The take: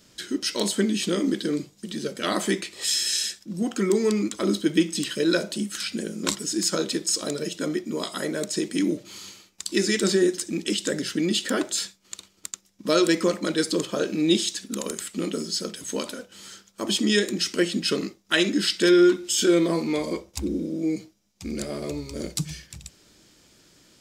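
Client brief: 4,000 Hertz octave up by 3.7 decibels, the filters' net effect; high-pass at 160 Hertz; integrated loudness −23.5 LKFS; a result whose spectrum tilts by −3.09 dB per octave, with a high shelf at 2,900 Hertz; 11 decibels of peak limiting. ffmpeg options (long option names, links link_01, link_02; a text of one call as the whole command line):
ffmpeg -i in.wav -af "highpass=160,highshelf=frequency=2900:gain=-4.5,equalizer=frequency=4000:width_type=o:gain=8.5,volume=3dB,alimiter=limit=-11.5dB:level=0:latency=1" out.wav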